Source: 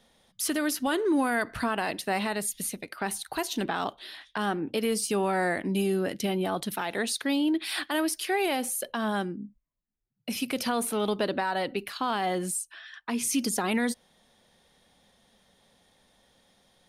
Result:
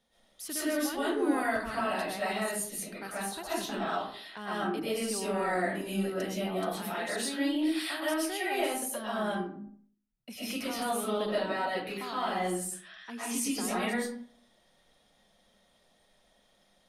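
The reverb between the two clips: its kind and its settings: digital reverb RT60 0.56 s, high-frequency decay 0.55×, pre-delay 85 ms, DRR -9.5 dB; gain -12.5 dB

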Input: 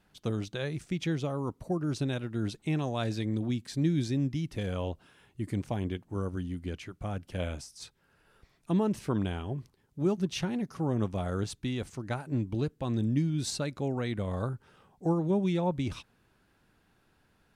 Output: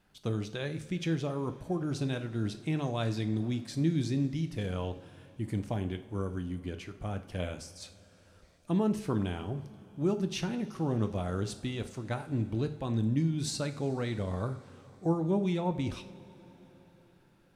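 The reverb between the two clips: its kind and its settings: two-slope reverb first 0.47 s, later 4.6 s, from -18 dB, DRR 8 dB; gain -1.5 dB

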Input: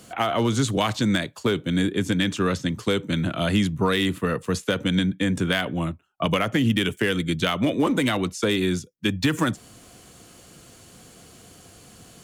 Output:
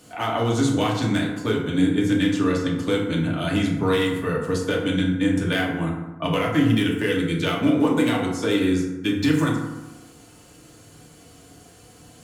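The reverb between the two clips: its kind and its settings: FDN reverb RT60 1.1 s, low-frequency decay 1.05×, high-frequency decay 0.45×, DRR -3 dB; gain -5 dB

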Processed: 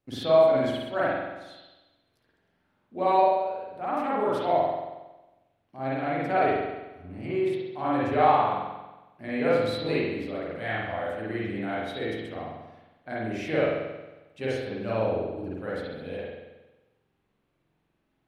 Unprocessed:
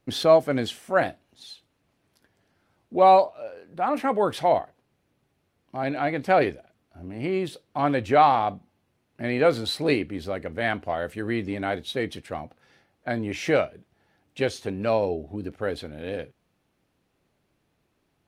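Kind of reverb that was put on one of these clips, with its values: spring tank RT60 1.1 s, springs 45 ms, chirp 25 ms, DRR -8 dB; gain -11.5 dB

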